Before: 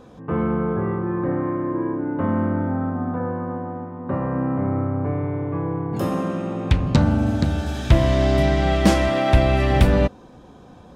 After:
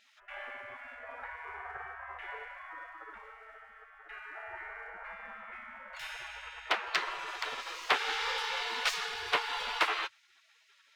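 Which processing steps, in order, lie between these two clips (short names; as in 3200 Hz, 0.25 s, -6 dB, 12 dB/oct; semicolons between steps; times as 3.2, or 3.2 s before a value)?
median filter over 5 samples; spectral gate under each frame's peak -30 dB weak; overdrive pedal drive 8 dB, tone 1100 Hz, clips at -3.5 dBFS; Doppler distortion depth 0.13 ms; gain +8 dB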